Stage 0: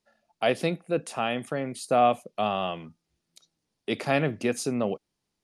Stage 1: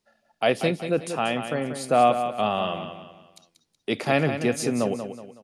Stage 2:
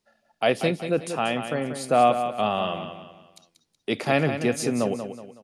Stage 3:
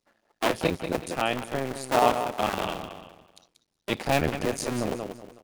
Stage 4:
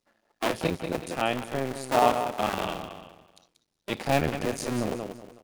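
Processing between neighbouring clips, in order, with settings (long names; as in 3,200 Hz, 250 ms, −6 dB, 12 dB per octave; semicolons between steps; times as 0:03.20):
repeating echo 186 ms, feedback 38%, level −9 dB; level +2.5 dB
no processing that can be heard
sub-harmonics by changed cycles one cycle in 2, muted
harmonic and percussive parts rebalanced harmonic +5 dB; level −3.5 dB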